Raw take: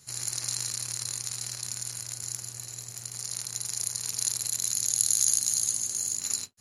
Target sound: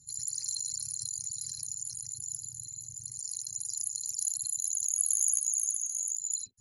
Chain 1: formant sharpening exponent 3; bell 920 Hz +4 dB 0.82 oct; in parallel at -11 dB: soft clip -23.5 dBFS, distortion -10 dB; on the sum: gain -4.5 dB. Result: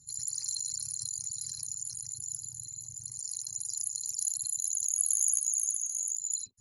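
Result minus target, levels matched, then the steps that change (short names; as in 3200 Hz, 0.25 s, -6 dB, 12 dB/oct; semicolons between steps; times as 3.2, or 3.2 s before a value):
1000 Hz band +3.0 dB
change: bell 920 Hz -5 dB 0.82 oct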